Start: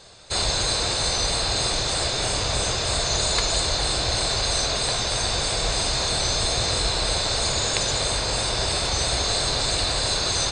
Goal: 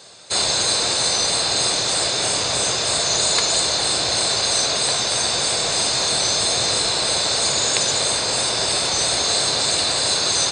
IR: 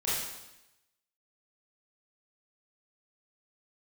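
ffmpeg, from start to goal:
-af "highpass=160,highshelf=f=6.5k:g=7,volume=2.5dB"

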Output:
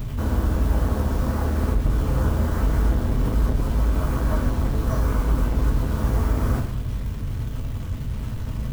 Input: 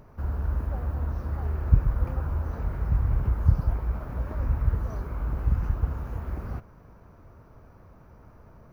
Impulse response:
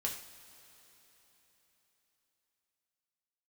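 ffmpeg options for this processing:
-filter_complex "[0:a]bass=f=250:g=12,treble=f=4k:g=3,bandreject=f=760:w=19,asplit=2[a][b];[b]acompressor=threshold=-20dB:ratio=6,volume=0.5dB[c];[a][c]amix=inputs=2:normalize=0,alimiter=limit=-5dB:level=0:latency=1:release=214,acontrast=78,acrossover=split=480[d][e];[d]asoftclip=type=tanh:threshold=-21.5dB[f];[e]acrusher=bits=6:mix=0:aa=0.000001[g];[f][g]amix=inputs=2:normalize=0[h];[1:a]atrim=start_sample=2205,afade=t=out:st=0.39:d=0.01,atrim=end_sample=17640[i];[h][i]afir=irnorm=-1:irlink=0"

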